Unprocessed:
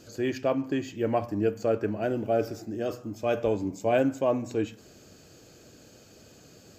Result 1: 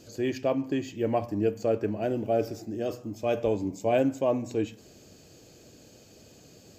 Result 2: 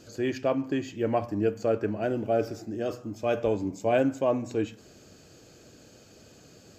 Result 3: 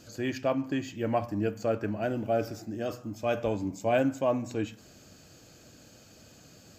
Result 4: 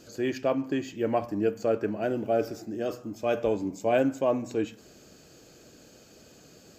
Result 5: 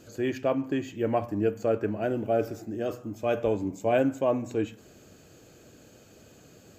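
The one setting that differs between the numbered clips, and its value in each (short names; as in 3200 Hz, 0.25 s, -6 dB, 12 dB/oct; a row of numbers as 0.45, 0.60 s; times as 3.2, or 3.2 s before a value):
bell, frequency: 1400, 16000, 410, 98, 5000 Hz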